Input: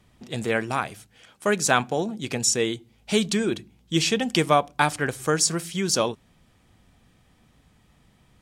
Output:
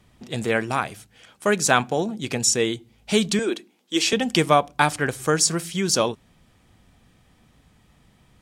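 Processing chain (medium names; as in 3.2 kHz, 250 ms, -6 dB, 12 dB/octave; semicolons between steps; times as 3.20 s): 3.39–4.13 s: high-pass 280 Hz 24 dB/octave; trim +2 dB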